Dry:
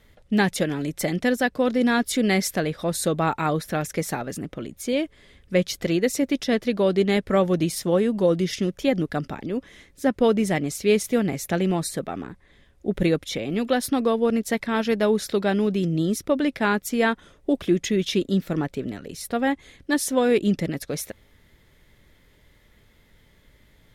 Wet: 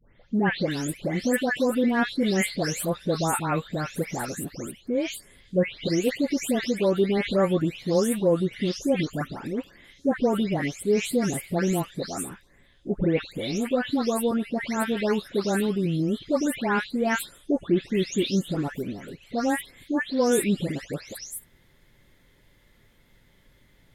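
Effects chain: spectral delay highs late, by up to 0.344 s; gain -1.5 dB

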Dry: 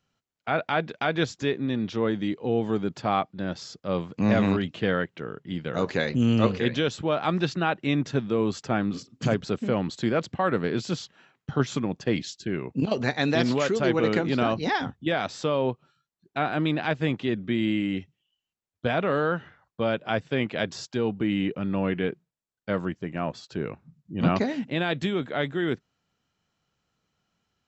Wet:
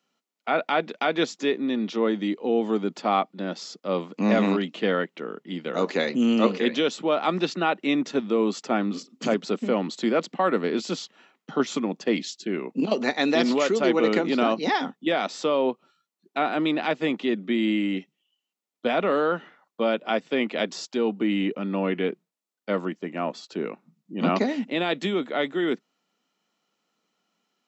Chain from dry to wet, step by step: steep high-pass 200 Hz 36 dB/oct; notch 1600 Hz, Q 9.3; gain +2.5 dB

